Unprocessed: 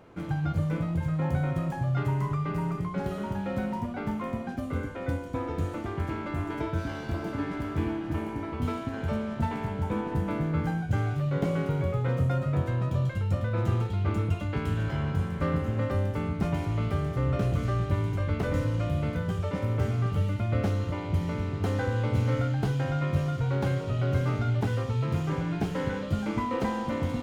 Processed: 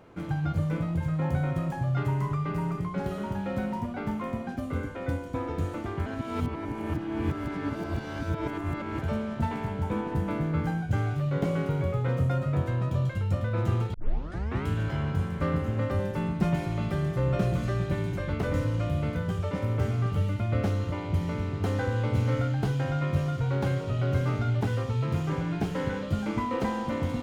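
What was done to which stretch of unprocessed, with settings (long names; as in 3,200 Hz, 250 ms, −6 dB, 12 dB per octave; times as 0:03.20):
0:06.06–0:09.02: reverse
0:13.94: tape start 0.72 s
0:15.99–0:18.33: comb filter 5.6 ms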